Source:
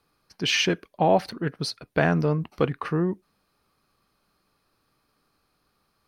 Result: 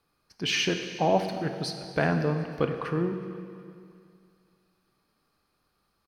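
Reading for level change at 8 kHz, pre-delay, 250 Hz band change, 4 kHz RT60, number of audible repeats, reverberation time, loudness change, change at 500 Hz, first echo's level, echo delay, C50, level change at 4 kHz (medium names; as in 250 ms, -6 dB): -3.0 dB, 21 ms, -3.0 dB, 2.3 s, 2, 2.3 s, -3.5 dB, -3.0 dB, -22.0 dB, 367 ms, 7.0 dB, -3.0 dB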